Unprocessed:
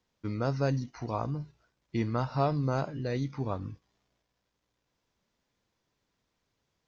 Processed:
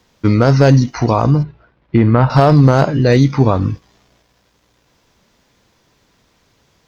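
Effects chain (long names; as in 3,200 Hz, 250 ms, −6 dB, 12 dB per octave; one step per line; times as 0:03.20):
asymmetric clip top −24 dBFS, bottom −18.5 dBFS
0:01.43–0:02.30: high-frequency loss of the air 420 metres
boost into a limiter +23 dB
level −1 dB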